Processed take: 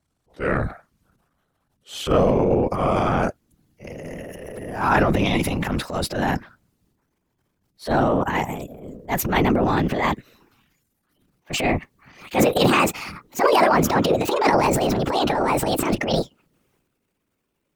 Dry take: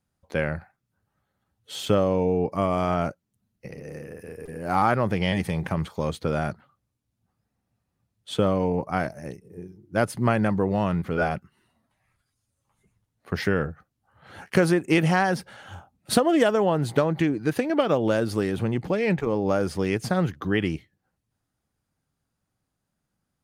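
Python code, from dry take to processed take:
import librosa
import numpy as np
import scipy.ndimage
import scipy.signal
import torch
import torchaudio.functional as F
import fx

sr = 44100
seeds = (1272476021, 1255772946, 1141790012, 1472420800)

y = fx.speed_glide(x, sr, from_pct=86, to_pct=178)
y = fx.whisperise(y, sr, seeds[0])
y = fx.transient(y, sr, attack_db=-11, sustain_db=9)
y = y * librosa.db_to_amplitude(4.0)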